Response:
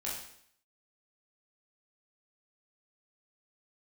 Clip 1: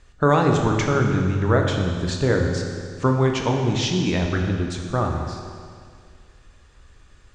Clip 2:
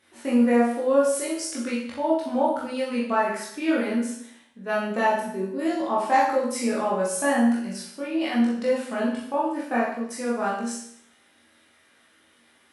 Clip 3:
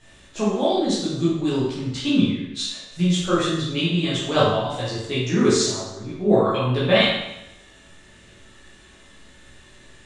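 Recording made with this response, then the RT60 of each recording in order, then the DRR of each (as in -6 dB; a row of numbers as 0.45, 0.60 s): 2; 2.1, 0.65, 0.90 s; 1.5, -6.5, -9.5 dB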